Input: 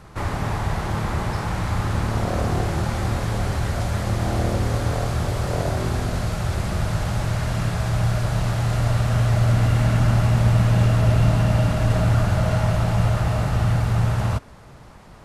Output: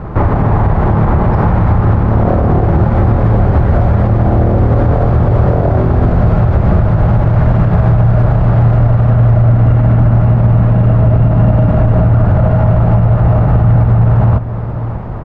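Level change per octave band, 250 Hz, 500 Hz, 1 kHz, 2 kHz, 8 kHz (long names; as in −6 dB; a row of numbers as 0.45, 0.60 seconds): +12.0 dB, +11.5 dB, +9.5 dB, +2.5 dB, below −20 dB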